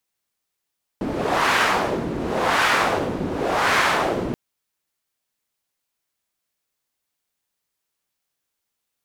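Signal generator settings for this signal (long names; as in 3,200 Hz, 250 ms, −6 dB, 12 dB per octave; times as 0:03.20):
wind from filtered noise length 3.33 s, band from 270 Hz, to 1,500 Hz, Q 1.2, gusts 3, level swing 8 dB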